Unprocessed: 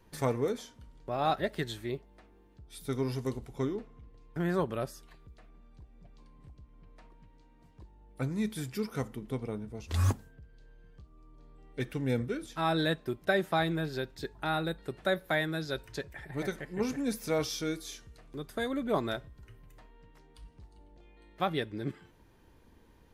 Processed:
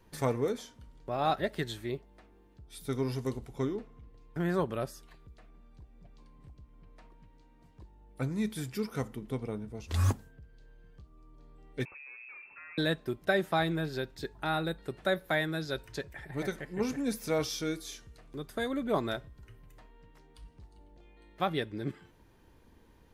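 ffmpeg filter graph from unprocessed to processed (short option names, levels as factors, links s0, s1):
-filter_complex "[0:a]asettb=1/sr,asplit=3[s0][s1][s2];[s0]atrim=end=11.854[s3];[s1]atrim=start=11.85:end=12.78,asetpts=PTS-STARTPTS,afade=t=in:d=0.004:c=qsin,afade=t=out:st=0.926:d=0.004:c=qsin,acompressor=threshold=0.01:ratio=12:attack=3.2:release=140:knee=1:detection=peak,aeval=exprs='(tanh(178*val(0)+0.2)-tanh(0.2))/178':c=same,lowpass=f=2300:t=q:w=0.5098,lowpass=f=2300:t=q:w=0.6013,lowpass=f=2300:t=q:w=0.9,lowpass=f=2300:t=q:w=2.563,afreqshift=-2700[s4];[s2]atrim=start=12.776[s5];[s3][s4]acrossfade=d=0.004:c1=hsin:c2=qsin[s6];[s6][s5]acrossfade=d=0.004:c1=qsin:c2=hsin"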